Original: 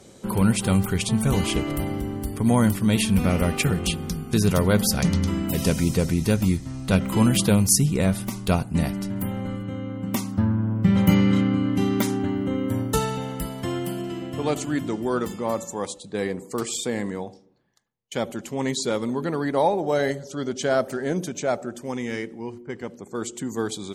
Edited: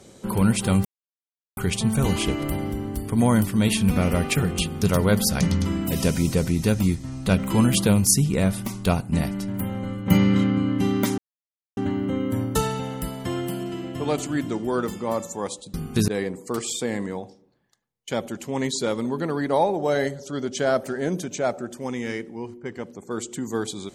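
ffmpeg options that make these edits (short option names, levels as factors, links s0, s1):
-filter_complex "[0:a]asplit=7[s0][s1][s2][s3][s4][s5][s6];[s0]atrim=end=0.85,asetpts=PTS-STARTPTS,afade=t=out:st=0.846:d=0.004:c=hsin,apad=pad_dur=0.72[s7];[s1]atrim=start=0.85:end=4.112,asetpts=PTS-STARTPTS,afade=t=in:d=0.004:c=hsin[s8];[s2]atrim=start=4.448:end=9.702[s9];[s3]atrim=start=11.048:end=12.15,asetpts=PTS-STARTPTS,afade=t=out:st=1.098:d=0.004:c=hsin,apad=pad_dur=0.59[s10];[s4]atrim=start=12.15:end=16.122,asetpts=PTS-STARTPTS,afade=t=in:d=0.004:c=hsin[s11];[s5]atrim=start=4.108:end=4.452[s12];[s6]atrim=start=16.118[s13];[s7][s8]concat=n=2:v=0:a=1[s14];[s14][s9]acrossfade=d=0.004:c1=hsin:c2=hsin[s15];[s10][s11]concat=n=2:v=0:a=1[s16];[s15][s16]acrossfade=d=0.004:c1=hsin:c2=hsin[s17];[s17][s12]acrossfade=d=0.004:c1=hsin:c2=hsin[s18];[s18][s13]acrossfade=d=0.004:c1=hsin:c2=hsin"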